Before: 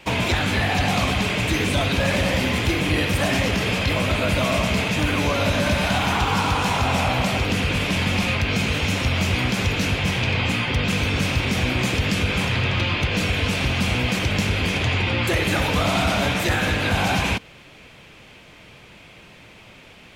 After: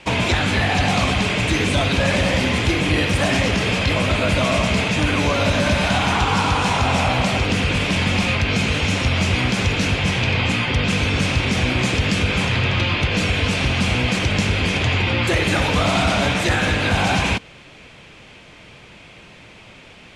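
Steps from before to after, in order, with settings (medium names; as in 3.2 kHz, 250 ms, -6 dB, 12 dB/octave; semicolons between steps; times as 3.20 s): low-pass 9.9 kHz 24 dB/octave; trim +2.5 dB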